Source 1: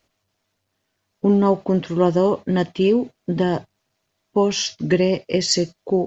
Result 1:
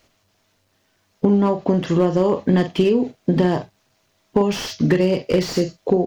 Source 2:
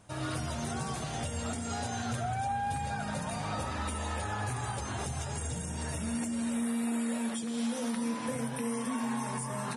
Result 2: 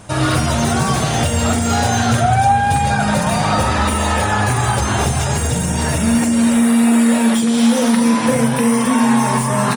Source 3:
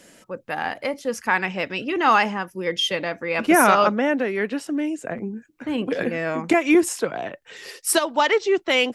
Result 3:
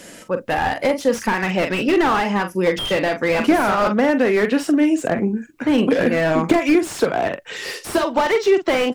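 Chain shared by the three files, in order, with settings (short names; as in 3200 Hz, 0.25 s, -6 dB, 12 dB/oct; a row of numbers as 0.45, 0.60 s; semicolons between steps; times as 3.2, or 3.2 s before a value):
compressor 8:1, threshold -22 dBFS; doubler 44 ms -10 dB; slew limiter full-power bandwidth 58 Hz; normalise peaks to -3 dBFS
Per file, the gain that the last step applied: +8.5, +19.0, +10.0 dB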